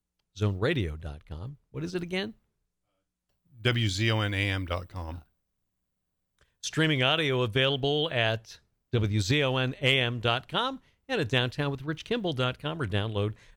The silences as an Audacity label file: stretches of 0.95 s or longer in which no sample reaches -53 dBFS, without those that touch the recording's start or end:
2.340000	3.530000	silence
5.240000	6.390000	silence